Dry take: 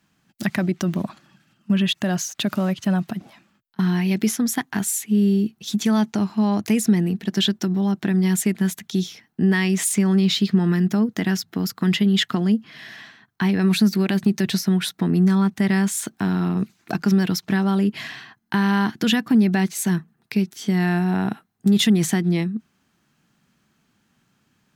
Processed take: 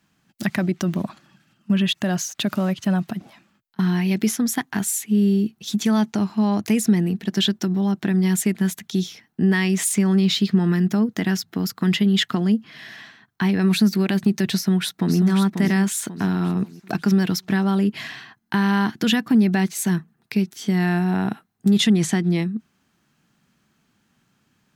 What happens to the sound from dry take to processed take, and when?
14.54–15.17 echo throw 0.54 s, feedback 40%, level -6.5 dB
21.78–22.3 LPF 9500 Hz

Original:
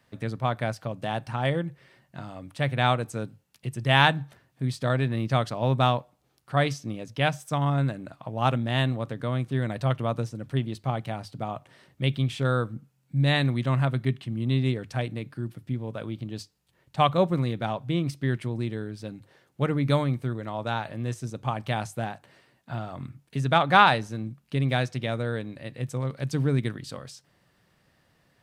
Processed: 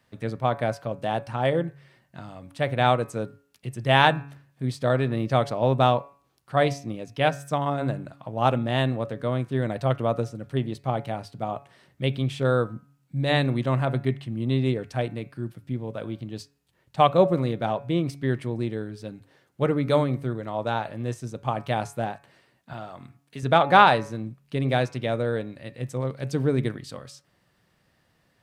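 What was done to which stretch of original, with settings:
22.73–23.43 low shelf 210 Hz -11 dB
whole clip: de-hum 140.6 Hz, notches 19; dynamic EQ 500 Hz, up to +7 dB, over -38 dBFS, Q 0.75; gain -1 dB

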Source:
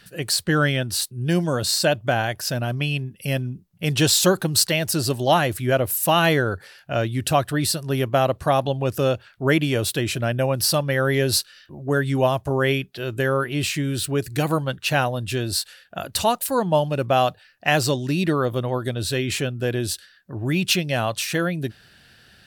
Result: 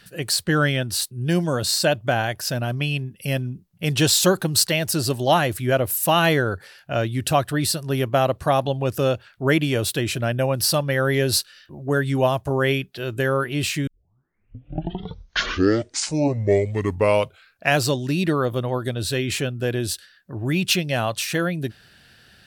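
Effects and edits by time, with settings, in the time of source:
13.87 tape start 4.01 s

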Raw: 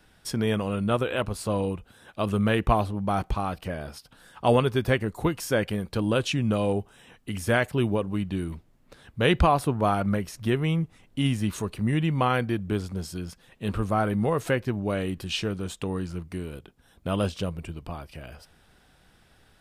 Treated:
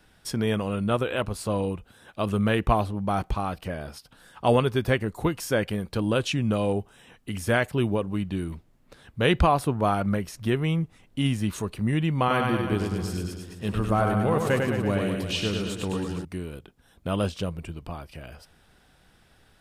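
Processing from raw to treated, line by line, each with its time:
12.18–16.25 reverse bouncing-ball echo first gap 0.1 s, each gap 1.1×, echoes 6

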